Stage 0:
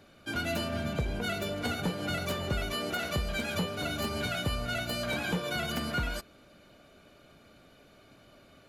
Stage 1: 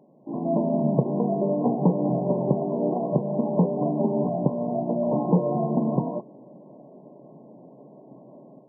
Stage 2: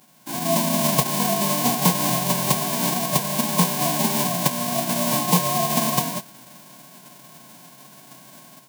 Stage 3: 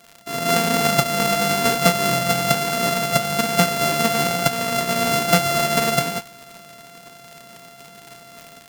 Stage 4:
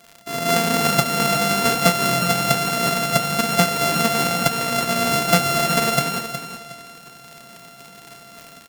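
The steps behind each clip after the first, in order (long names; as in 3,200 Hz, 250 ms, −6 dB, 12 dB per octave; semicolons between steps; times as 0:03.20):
brick-wall band-pass 120–1,100 Hz; parametric band 270 Hz +3.5 dB 2.4 octaves; automatic gain control gain up to 9.5 dB
spectral envelope flattened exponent 0.1; parametric band 720 Hz +8.5 dB 0.29 octaves; level +1.5 dB
samples sorted by size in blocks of 64 samples; flanger 1.1 Hz, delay 0.6 ms, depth 8.6 ms, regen +84%; surface crackle 110 per second −35 dBFS; level +6.5 dB
repeating echo 365 ms, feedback 25%, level −9.5 dB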